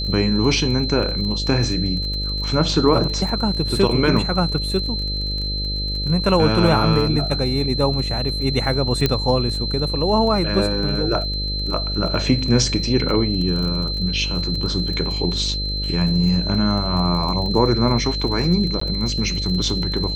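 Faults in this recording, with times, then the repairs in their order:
buzz 50 Hz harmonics 12 -26 dBFS
crackle 26/s -27 dBFS
tone 4100 Hz -25 dBFS
9.06 pop -4 dBFS
18.8–18.81 gap 14 ms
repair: de-click; de-hum 50 Hz, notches 12; notch 4100 Hz, Q 30; interpolate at 18.8, 14 ms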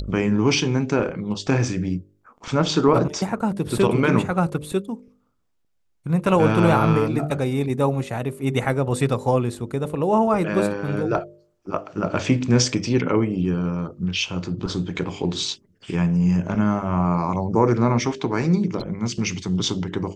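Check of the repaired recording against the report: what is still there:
none

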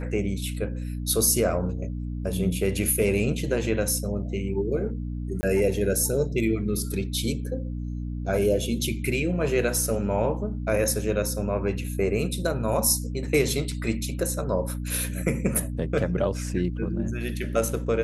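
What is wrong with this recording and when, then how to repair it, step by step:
hum 60 Hz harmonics 5 -31 dBFS
5.41–5.43 gap 20 ms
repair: de-hum 60 Hz, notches 5; interpolate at 5.41, 20 ms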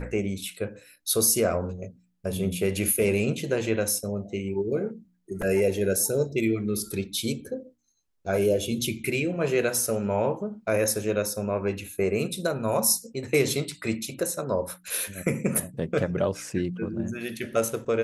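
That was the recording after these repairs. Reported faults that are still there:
none

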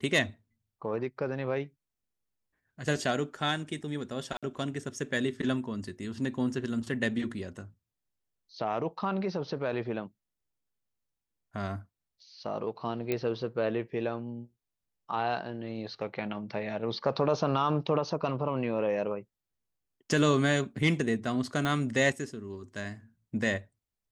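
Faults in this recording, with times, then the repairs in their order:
4.37–4.43 gap 56 ms
13.12 pop -16 dBFS
21.65 pop -17 dBFS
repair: de-click; interpolate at 4.37, 56 ms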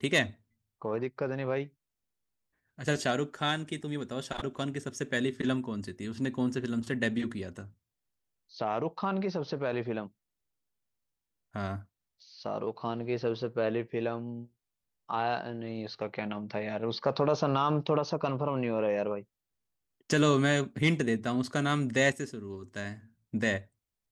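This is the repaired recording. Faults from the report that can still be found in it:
21.65 pop

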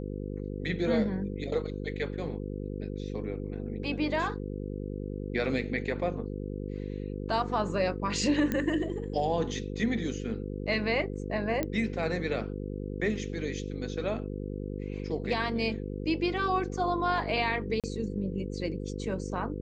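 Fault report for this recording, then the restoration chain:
buzz 50 Hz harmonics 10 -36 dBFS
8.52 pop -16 dBFS
11.63 pop -16 dBFS
17.8–17.84 gap 37 ms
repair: de-click; de-hum 50 Hz, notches 10; interpolate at 17.8, 37 ms

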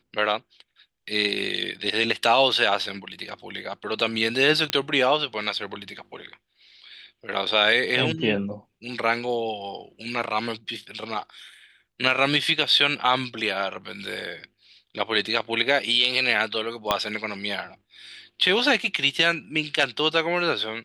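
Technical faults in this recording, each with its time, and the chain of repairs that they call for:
4.7 pop -7 dBFS
16.91 pop -6 dBFS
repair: de-click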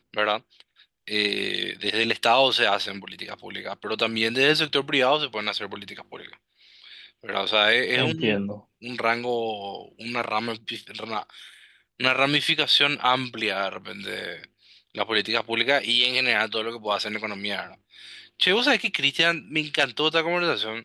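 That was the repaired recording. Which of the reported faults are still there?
16.91 pop

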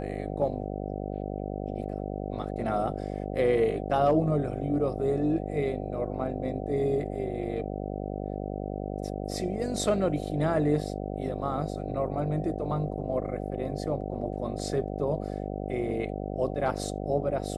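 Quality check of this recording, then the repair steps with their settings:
buzz 50 Hz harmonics 15 -34 dBFS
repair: de-hum 50 Hz, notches 15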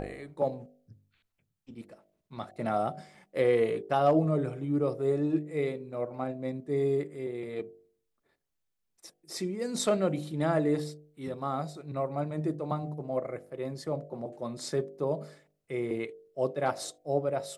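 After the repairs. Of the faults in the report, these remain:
none

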